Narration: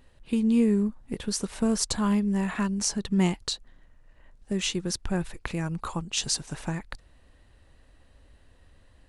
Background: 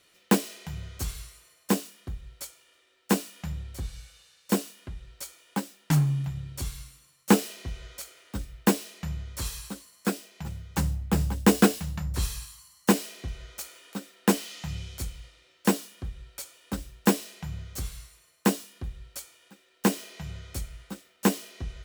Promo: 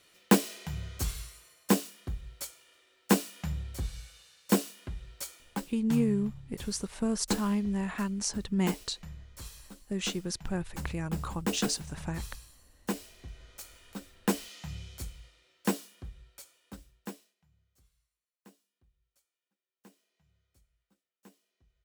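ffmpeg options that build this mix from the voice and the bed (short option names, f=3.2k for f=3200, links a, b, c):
-filter_complex "[0:a]adelay=5400,volume=-5dB[a];[1:a]volume=6dB,afade=t=out:st=5.35:d=0.37:silence=0.251189,afade=t=in:st=13.13:d=0.71:silence=0.501187,afade=t=out:st=15.73:d=1.62:silence=0.0398107[b];[a][b]amix=inputs=2:normalize=0"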